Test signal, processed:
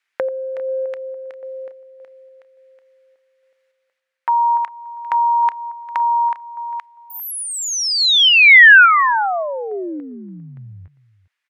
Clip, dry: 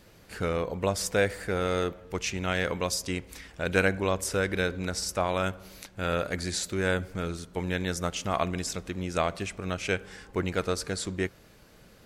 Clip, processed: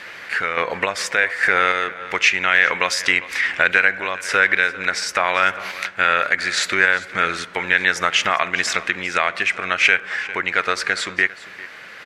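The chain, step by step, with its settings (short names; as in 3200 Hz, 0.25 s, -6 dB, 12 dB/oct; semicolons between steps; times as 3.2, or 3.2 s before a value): compressor 3:1, threshold -34 dBFS; random-step tremolo; band-pass 1900 Hz, Q 2.4; echo 0.4 s -18.5 dB; maximiser +32.5 dB; gain -1 dB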